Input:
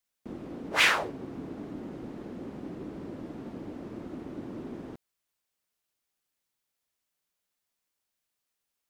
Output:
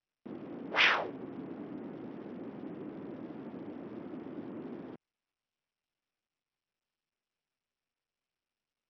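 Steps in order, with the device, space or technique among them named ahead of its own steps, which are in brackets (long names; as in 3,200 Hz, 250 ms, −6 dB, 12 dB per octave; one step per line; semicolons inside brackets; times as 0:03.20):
Bluetooth headset (high-pass filter 150 Hz 12 dB per octave; downsampling to 8,000 Hz; level −3 dB; SBC 64 kbit/s 44,100 Hz)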